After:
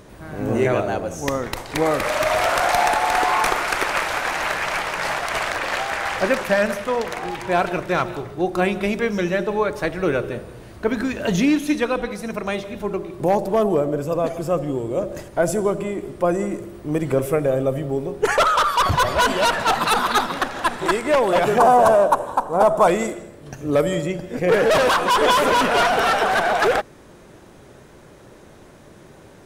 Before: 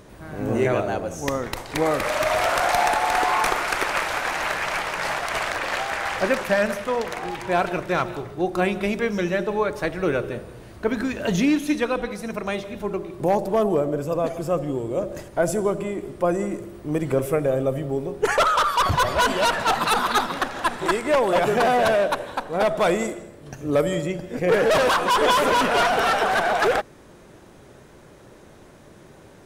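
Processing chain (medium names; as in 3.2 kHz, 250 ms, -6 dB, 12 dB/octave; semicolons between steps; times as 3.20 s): 21.58–22.88 s: ten-band graphic EQ 1 kHz +11 dB, 2 kHz -12 dB, 4 kHz -9 dB, 8 kHz +5 dB; trim +2 dB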